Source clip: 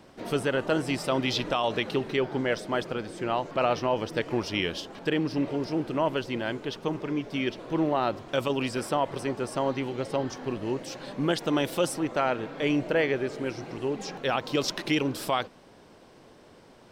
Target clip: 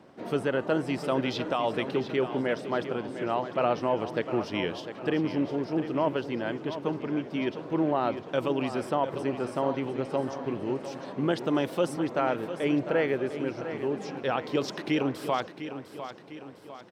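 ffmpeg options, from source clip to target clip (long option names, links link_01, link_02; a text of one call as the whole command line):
ffmpeg -i in.wav -af "highpass=120,highshelf=frequency=2800:gain=-11,aecho=1:1:703|1406|2109|2812|3515:0.282|0.135|0.0649|0.0312|0.015" out.wav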